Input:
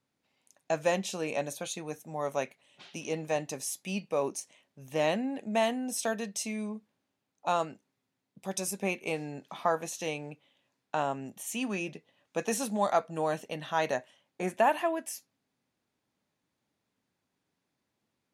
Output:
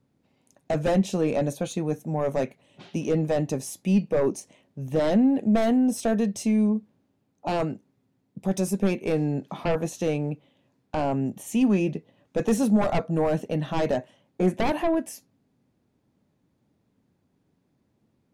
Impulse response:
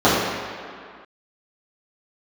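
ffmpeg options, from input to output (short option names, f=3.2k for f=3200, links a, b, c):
-af "aeval=exprs='0.211*sin(PI/2*3.16*val(0)/0.211)':c=same,tiltshelf=f=630:g=9,volume=-5.5dB"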